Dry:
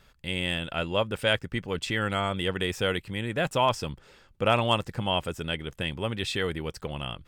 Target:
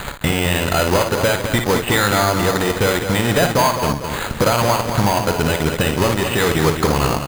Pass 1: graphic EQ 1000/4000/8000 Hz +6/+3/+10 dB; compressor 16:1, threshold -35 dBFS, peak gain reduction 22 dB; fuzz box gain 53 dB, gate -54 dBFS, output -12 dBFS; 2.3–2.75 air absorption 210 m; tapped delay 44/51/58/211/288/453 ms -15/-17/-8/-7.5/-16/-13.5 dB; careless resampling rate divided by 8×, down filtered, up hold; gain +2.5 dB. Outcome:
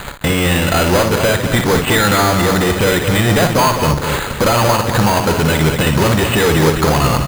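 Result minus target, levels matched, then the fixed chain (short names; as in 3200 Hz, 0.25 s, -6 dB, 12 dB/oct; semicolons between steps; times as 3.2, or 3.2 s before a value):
compressor: peak gain reduction -9.5 dB
graphic EQ 1000/4000/8000 Hz +6/+3/+10 dB; compressor 16:1, threshold -45 dBFS, peak gain reduction 31.5 dB; fuzz box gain 53 dB, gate -54 dBFS, output -12 dBFS; 2.3–2.75 air absorption 210 m; tapped delay 44/51/58/211/288/453 ms -15/-17/-8/-7.5/-16/-13.5 dB; careless resampling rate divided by 8×, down filtered, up hold; gain +2.5 dB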